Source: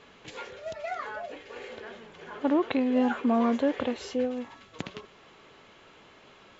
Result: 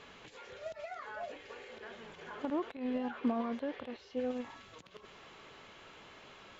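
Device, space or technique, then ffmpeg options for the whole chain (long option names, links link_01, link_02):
de-esser from a sidechain: -filter_complex "[0:a]equalizer=frequency=290:width=0.57:gain=-3,asettb=1/sr,asplit=3[link_01][link_02][link_03];[link_01]atrim=end=2.754[link_04];[link_02]atrim=start=2.75:end=4.17,asetpts=PTS-STARTPTS,afade=type=in:duration=0.004:curve=qsin,afade=type=out:start_time=1.416:duration=0.004:curve=qsin,lowpass=frequency=5400:width=0.5412,lowpass=frequency=5400:width=1.3066[link_05];[link_03]atrim=start=4.166[link_06];[link_04][link_05]acrossfade=duration=0.004:curve1=hsin:curve2=qsin[link_07];[link_07][link_06]acrossfade=duration=0.004:curve1=qsin:curve2=hsin,asplit=2[link_08][link_09];[link_09]highpass=4000,apad=whole_len=290919[link_10];[link_08][link_10]sidechaincompress=threshold=-60dB:ratio=20:attack=2.3:release=70,volume=1.5dB"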